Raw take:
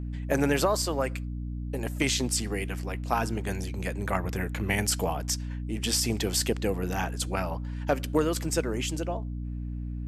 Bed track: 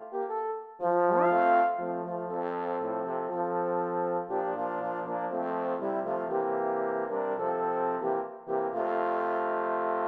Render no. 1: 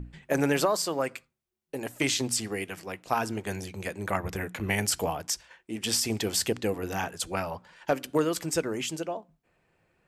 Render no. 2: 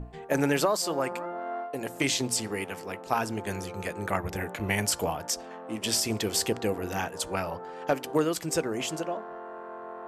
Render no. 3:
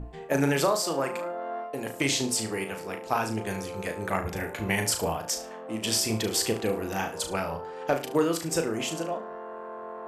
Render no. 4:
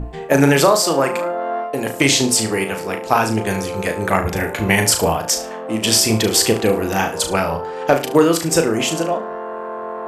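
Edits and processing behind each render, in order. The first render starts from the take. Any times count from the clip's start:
hum notches 60/120/180/240/300 Hz
add bed track -11.5 dB
flutter echo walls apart 6.2 m, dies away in 0.31 s
trim +11.5 dB; peak limiter -1 dBFS, peak gain reduction 1 dB

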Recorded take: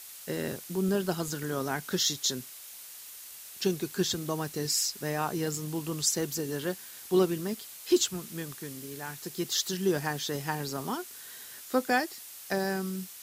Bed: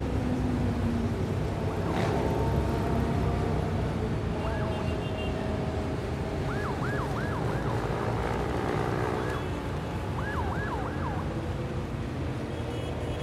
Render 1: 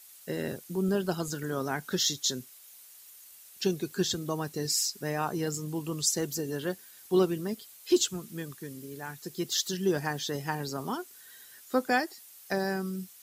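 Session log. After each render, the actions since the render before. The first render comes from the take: noise reduction 9 dB, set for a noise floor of -46 dBFS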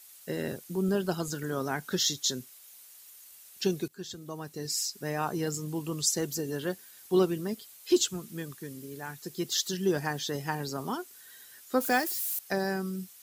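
3.88–5.27 s: fade in, from -16.5 dB; 11.80–12.39 s: zero-crossing glitches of -30 dBFS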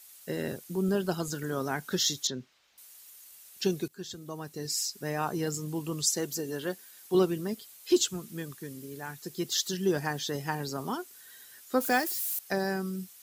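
2.27–2.78 s: distance through air 200 m; 6.15–7.15 s: bass shelf 110 Hz -11.5 dB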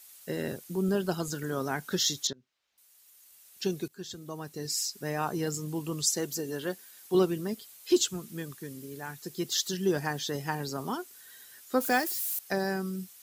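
2.33–4.15 s: fade in, from -24 dB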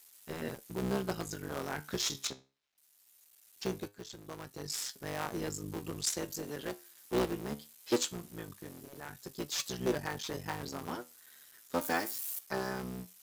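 cycle switcher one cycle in 3, muted; flange 0.21 Hz, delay 6.7 ms, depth 8.6 ms, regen +73%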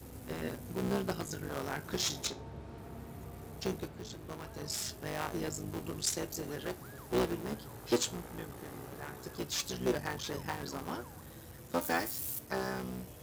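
add bed -19.5 dB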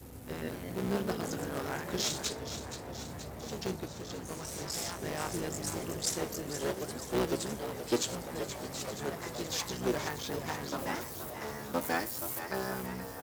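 ever faster or slower copies 262 ms, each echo +2 st, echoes 2, each echo -6 dB; frequency-shifting echo 475 ms, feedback 64%, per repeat +81 Hz, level -10 dB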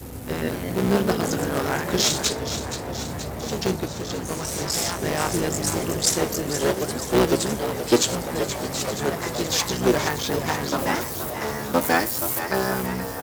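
trim +12 dB

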